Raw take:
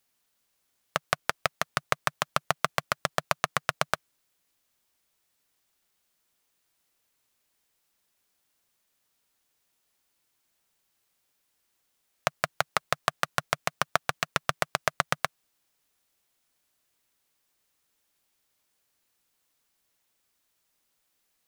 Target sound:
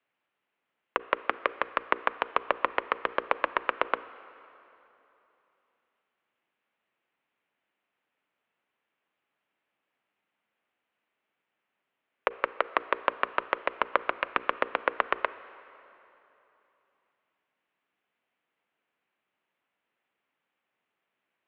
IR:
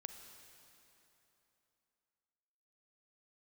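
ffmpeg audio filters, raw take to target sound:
-filter_complex "[0:a]bandreject=f=60:t=h:w=6,bandreject=f=120:t=h:w=6,bandreject=f=180:t=h:w=6,bandreject=f=240:t=h:w=6,bandreject=f=300:t=h:w=6,bandreject=f=360:t=h:w=6,bandreject=f=420:t=h:w=6,bandreject=f=480:t=h:w=6,bandreject=f=540:t=h:w=6,bandreject=f=600:t=h:w=6,asplit=2[a][b];[1:a]atrim=start_sample=2205[c];[b][c]afir=irnorm=-1:irlink=0,volume=-1.5dB[d];[a][d]amix=inputs=2:normalize=0,highpass=f=320:t=q:w=0.5412,highpass=f=320:t=q:w=1.307,lowpass=f=3k:t=q:w=0.5176,lowpass=f=3k:t=q:w=0.7071,lowpass=f=3k:t=q:w=1.932,afreqshift=-130,volume=-2.5dB"

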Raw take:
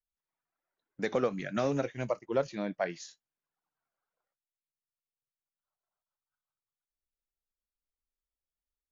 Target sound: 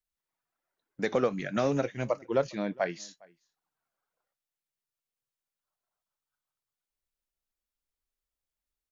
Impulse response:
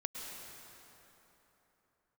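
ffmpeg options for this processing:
-filter_complex "[0:a]asplit=2[a][b];[b]adelay=408.2,volume=-26dB,highshelf=f=4k:g=-9.18[c];[a][c]amix=inputs=2:normalize=0,volume=2.5dB"

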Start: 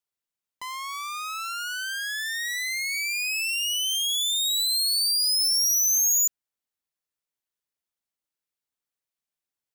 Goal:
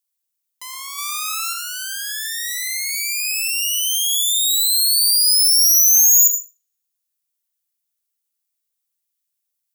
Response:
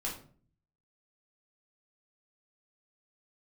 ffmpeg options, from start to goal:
-filter_complex "[0:a]asplit=3[a][b][c];[a]afade=t=out:st=0.97:d=0.02[d];[b]acontrast=34,afade=t=in:st=0.97:d=0.02,afade=t=out:st=1.52:d=0.02[e];[c]afade=t=in:st=1.52:d=0.02[f];[d][e][f]amix=inputs=3:normalize=0,crystalizer=i=5.5:c=0,asplit=2[g][h];[1:a]atrim=start_sample=2205,adelay=75[i];[h][i]afir=irnorm=-1:irlink=0,volume=-9dB[j];[g][j]amix=inputs=2:normalize=0,volume=-7dB"

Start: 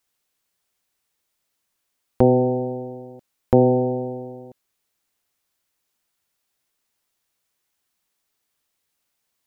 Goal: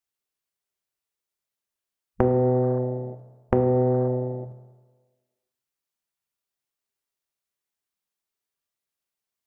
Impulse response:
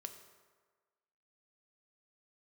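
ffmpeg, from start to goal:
-filter_complex "[0:a]afwtdn=0.0316,acompressor=threshold=-22dB:ratio=6[a];[1:a]atrim=start_sample=2205[b];[a][b]afir=irnorm=-1:irlink=0,volume=8.5dB"

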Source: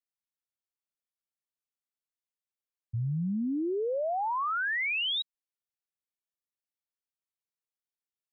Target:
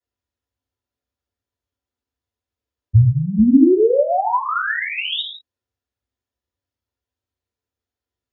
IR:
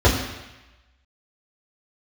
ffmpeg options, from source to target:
-filter_complex "[0:a]asettb=1/sr,asplit=3[a][b][c];[a]atrim=end=3.384[d];[b]atrim=start=3.38:end=3.79,asetpts=PTS-STARTPTS,afade=t=in:d=0.004:c=qsin,afade=t=out:st=0.406:d=0.004:c=qsin,lowshelf=f=110:g=10[e];[c]atrim=start=3.786[f];[d][e]acrossfade=d=0.004:c1=hsin:c2=qsin[g];[g][f]acrossfade=d=0.004:c1=qsin:c2=hsin[h];[1:a]atrim=start_sample=2205,afade=t=out:st=0.24:d=0.01,atrim=end_sample=11025[i];[h][i]afir=irnorm=-1:irlink=0,volume=-11.5dB"

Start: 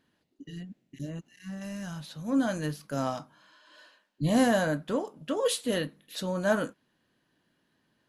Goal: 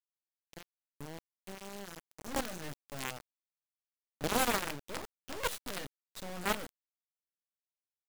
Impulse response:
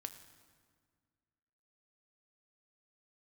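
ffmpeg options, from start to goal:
-af "acrusher=bits=3:dc=4:mix=0:aa=0.000001,aeval=exprs='0.188*(cos(1*acos(clip(val(0)/0.188,-1,1)))-cos(1*PI/2))+0.0168*(cos(3*acos(clip(val(0)/0.188,-1,1)))-cos(3*PI/2))+0.0106*(cos(7*acos(clip(val(0)/0.188,-1,1)))-cos(7*PI/2))+0.0335*(cos(8*acos(clip(val(0)/0.188,-1,1)))-cos(8*PI/2))':c=same"

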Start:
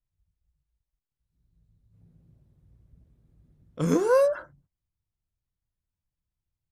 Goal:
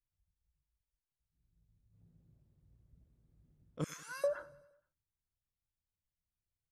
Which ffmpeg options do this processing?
-filter_complex "[0:a]asettb=1/sr,asplit=3[a][b][c];[a]atrim=end=3.844[d];[b]atrim=start=3.84:end=4.24,asetpts=PTS-STARTPTS,afade=t=in:d=0.004:c=qsin,afade=t=out:st=0.396:d=0.004:c=qsin,highpass=f=1.5k:w=0.5412,highpass=f=1.5k:w=1.3066[e];[c]atrim=start=4.236[f];[d][e]acrossfade=d=0.004:c1=hsin:c2=qsin[g];[g][f]acrossfade=d=0.004:c1=qsin:c2=hsin,asplit=2[h][i];[i]aecho=0:1:94|188|282|376|470:0.0891|0.0526|0.031|0.0183|0.0108[j];[h][j]amix=inputs=2:normalize=0,volume=-8.5dB"

